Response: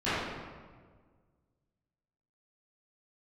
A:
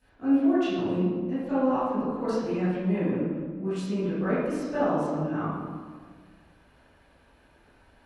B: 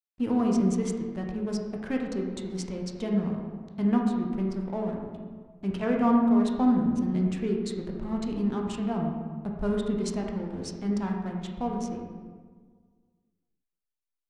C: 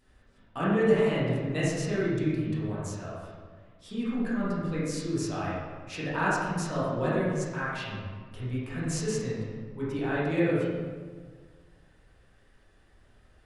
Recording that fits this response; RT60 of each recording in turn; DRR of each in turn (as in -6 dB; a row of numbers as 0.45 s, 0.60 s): A; 1.6 s, 1.6 s, 1.6 s; -17.0 dB, 0.0 dB, -9.0 dB